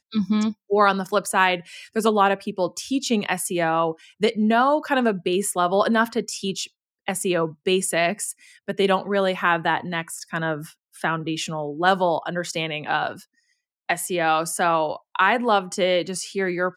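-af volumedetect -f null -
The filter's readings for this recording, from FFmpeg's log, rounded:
mean_volume: -23.0 dB
max_volume: -4.1 dB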